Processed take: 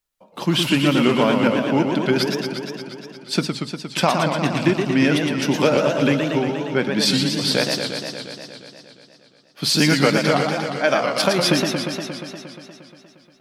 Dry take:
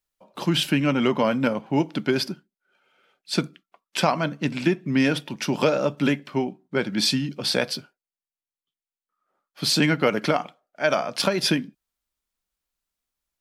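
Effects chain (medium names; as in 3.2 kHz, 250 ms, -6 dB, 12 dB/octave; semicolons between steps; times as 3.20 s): modulated delay 118 ms, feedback 77%, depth 181 cents, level -5.5 dB; trim +2.5 dB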